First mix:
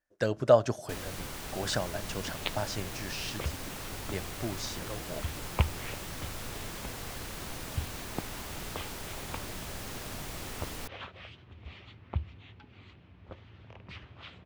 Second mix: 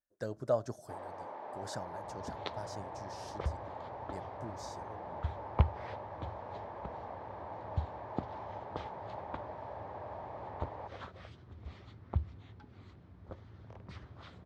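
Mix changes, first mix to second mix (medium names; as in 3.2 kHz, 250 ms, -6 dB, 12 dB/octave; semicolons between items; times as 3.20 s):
speech -9.5 dB; first sound: add cabinet simulation 480–2200 Hz, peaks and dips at 600 Hz +7 dB, 880 Hz +10 dB, 1.4 kHz -10 dB, 2 kHz -4 dB; master: add peaking EQ 2.7 kHz -15 dB 0.87 oct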